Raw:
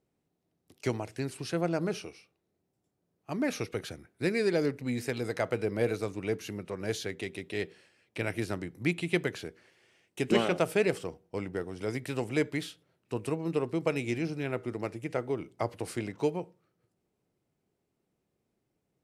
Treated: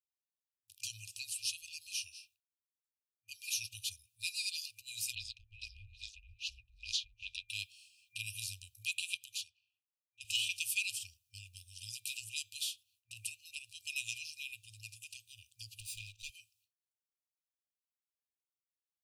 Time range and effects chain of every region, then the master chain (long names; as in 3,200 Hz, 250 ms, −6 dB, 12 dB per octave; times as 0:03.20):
0:05.15–0:07.49: auto-filter low-pass sine 2.4 Hz 590–5,400 Hz + single-tap delay 772 ms −21.5 dB + ring modulation 140 Hz
0:09.14–0:10.25: high-pass filter 180 Hz + low-pass that shuts in the quiet parts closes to 510 Hz, open at −30.5 dBFS + downward compressor 5 to 1, threshold −37 dBFS
0:15.80–0:16.30: lower of the sound and its delayed copy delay 0.82 ms + high-shelf EQ 6,200 Hz −10 dB
whole clip: noise gate with hold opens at −60 dBFS; brick-wall band-stop 110–2,400 Hz; spectral tilt +3 dB per octave; level −1 dB